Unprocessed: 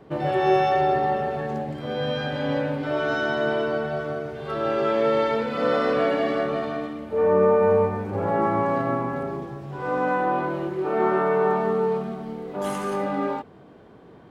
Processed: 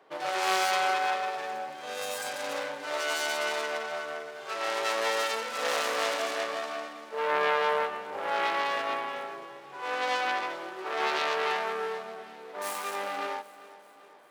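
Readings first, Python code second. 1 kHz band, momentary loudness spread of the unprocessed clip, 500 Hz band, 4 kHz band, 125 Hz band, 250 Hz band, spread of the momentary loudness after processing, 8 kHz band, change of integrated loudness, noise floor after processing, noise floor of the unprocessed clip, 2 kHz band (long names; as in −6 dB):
−4.5 dB, 10 LU, −10.5 dB, +4.5 dB, below −25 dB, −19.0 dB, 12 LU, can't be measured, −6.5 dB, −50 dBFS, −48 dBFS, 0.0 dB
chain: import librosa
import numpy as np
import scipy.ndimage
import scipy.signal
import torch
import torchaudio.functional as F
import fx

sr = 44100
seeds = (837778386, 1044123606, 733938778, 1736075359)

y = fx.tracing_dist(x, sr, depth_ms=0.46)
y = scipy.signal.sosfilt(scipy.signal.butter(2, 750.0, 'highpass', fs=sr, output='sos'), y)
y = fx.echo_feedback(y, sr, ms=393, feedback_pct=55, wet_db=-18)
y = F.gain(torch.from_numpy(y), -2.5).numpy()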